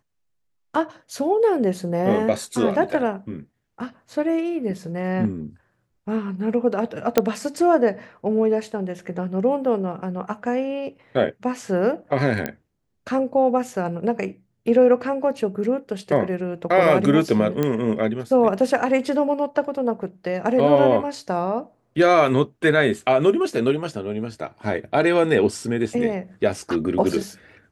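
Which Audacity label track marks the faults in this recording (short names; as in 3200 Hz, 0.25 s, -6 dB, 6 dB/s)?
7.180000	7.180000	pop -2 dBFS
12.460000	12.460000	pop -11 dBFS
17.630000	17.630000	pop -10 dBFS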